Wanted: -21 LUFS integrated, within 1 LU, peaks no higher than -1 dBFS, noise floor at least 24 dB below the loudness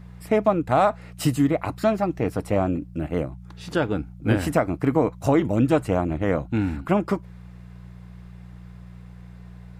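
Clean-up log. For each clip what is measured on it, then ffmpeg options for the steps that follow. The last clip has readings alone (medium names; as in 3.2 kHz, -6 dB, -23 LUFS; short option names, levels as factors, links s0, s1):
hum 60 Hz; highest harmonic 180 Hz; hum level -39 dBFS; loudness -23.5 LUFS; peak level -7.0 dBFS; loudness target -21.0 LUFS
-> -af "bandreject=f=60:t=h:w=4,bandreject=f=120:t=h:w=4,bandreject=f=180:t=h:w=4"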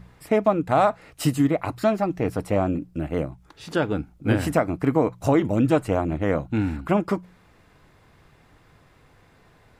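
hum not found; loudness -23.5 LUFS; peak level -7.0 dBFS; loudness target -21.0 LUFS
-> -af "volume=1.33"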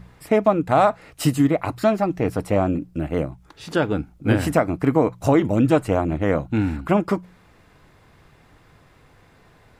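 loudness -21.5 LUFS; peak level -4.5 dBFS; noise floor -54 dBFS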